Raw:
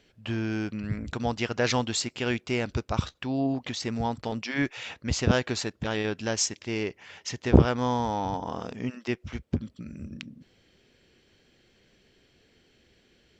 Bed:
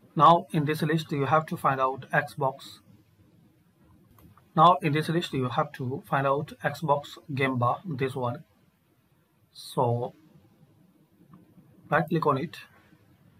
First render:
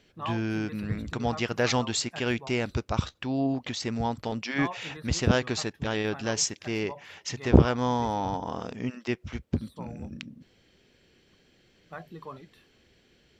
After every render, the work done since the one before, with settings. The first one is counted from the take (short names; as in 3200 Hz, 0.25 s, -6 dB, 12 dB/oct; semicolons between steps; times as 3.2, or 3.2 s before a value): add bed -18 dB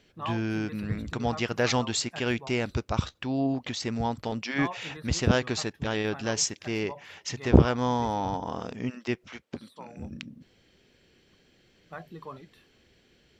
9.24–9.97 weighting filter A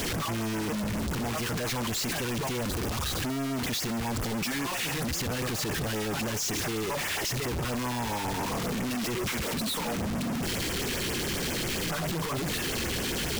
infinite clipping; LFO notch sine 7.4 Hz 560–4300 Hz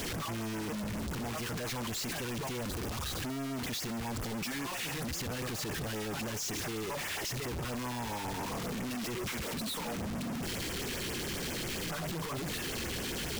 gain -6 dB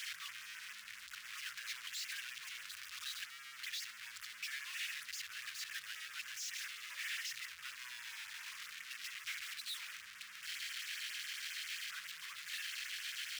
inverse Chebyshev high-pass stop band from 810 Hz, stop band 40 dB; high shelf 5000 Hz -11 dB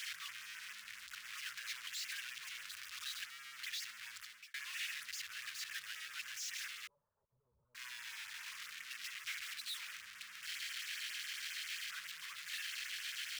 4.13–4.54 fade out; 6.87–7.75 steep low-pass 770 Hz 48 dB/oct